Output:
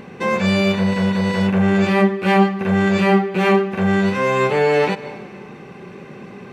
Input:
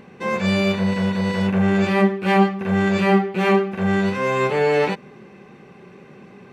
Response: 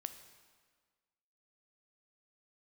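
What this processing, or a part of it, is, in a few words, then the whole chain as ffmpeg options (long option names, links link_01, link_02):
ducked reverb: -filter_complex "[0:a]asplit=3[link_01][link_02][link_03];[1:a]atrim=start_sample=2205[link_04];[link_02][link_04]afir=irnorm=-1:irlink=0[link_05];[link_03]apad=whole_len=287775[link_06];[link_05][link_06]sidechaincompress=threshold=-28dB:ratio=8:attack=16:release=202,volume=5.5dB[link_07];[link_01][link_07]amix=inputs=2:normalize=0"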